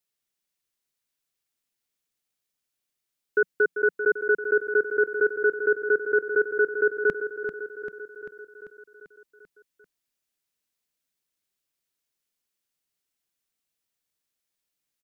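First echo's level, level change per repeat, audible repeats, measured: -9.0 dB, -4.5 dB, 6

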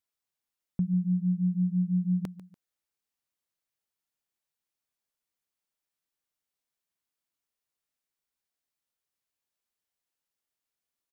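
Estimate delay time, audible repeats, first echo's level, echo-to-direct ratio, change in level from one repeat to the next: 0.145 s, 2, -16.0 dB, -15.5 dB, -8.5 dB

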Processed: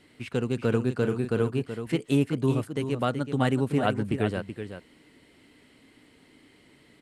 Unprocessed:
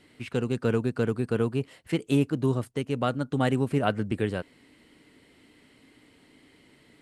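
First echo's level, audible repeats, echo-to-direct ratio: -9.0 dB, 1, -9.0 dB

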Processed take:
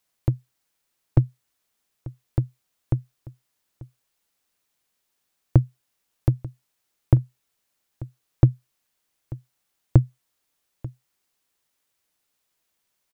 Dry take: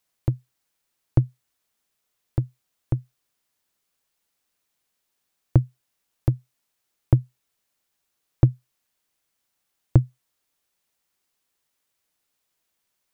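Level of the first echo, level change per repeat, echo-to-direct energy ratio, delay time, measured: -19.0 dB, no steady repeat, -19.0 dB, 0.889 s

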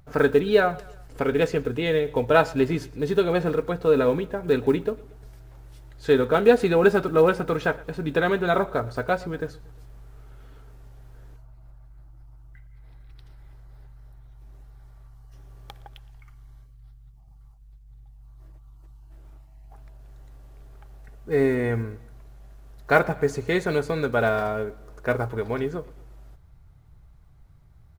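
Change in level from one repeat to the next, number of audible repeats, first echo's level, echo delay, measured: -6.0 dB, 3, -22.0 dB, 0.117 s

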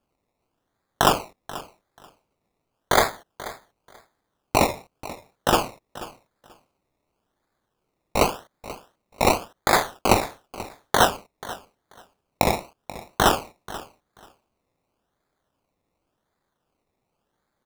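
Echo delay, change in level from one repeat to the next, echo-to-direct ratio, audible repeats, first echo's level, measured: 0.485 s, -15.5 dB, -17.0 dB, 2, -17.0 dB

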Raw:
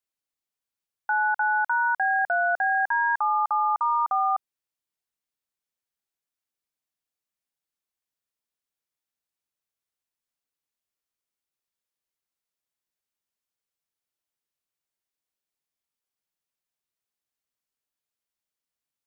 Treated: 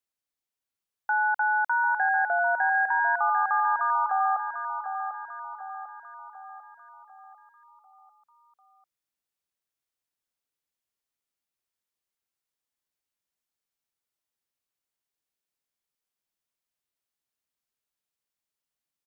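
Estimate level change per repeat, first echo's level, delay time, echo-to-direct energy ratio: -6.0 dB, -8.0 dB, 0.746 s, -7.0 dB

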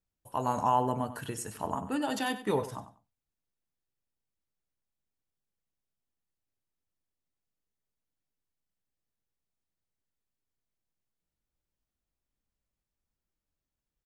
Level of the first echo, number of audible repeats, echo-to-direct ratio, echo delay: -13.5 dB, 2, -13.5 dB, 95 ms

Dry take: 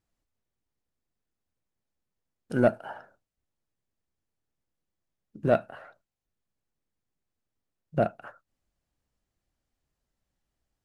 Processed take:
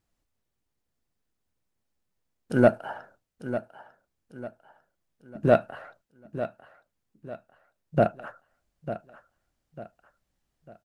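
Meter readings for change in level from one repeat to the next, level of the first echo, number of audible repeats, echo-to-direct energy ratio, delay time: -8.5 dB, -12.0 dB, 3, -11.5 dB, 0.898 s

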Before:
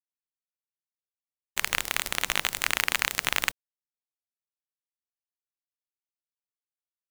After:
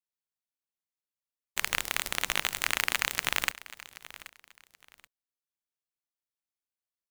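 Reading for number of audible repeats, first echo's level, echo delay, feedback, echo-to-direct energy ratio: 2, -17.5 dB, 0.779 s, 26%, -17.0 dB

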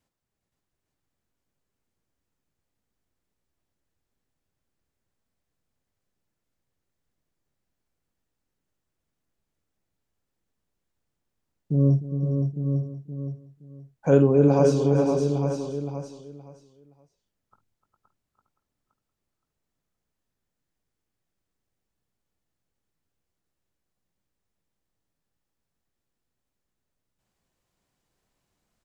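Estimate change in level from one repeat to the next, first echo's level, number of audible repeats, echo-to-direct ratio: no steady repeat, -12.5 dB, 15, -1.0 dB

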